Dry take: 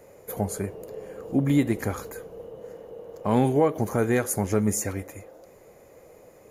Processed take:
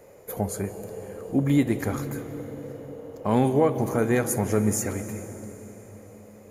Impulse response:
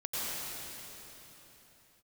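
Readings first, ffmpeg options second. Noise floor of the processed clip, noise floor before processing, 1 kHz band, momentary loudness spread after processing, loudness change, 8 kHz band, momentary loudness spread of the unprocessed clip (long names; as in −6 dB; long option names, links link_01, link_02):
−49 dBFS, −52 dBFS, 0.0 dB, 17 LU, 0.0 dB, +0.5 dB, 19 LU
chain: -filter_complex "[0:a]asplit=2[link_01][link_02];[1:a]atrim=start_sample=2205,lowshelf=frequency=340:gain=4,adelay=56[link_03];[link_02][link_03]afir=irnorm=-1:irlink=0,volume=-18dB[link_04];[link_01][link_04]amix=inputs=2:normalize=0"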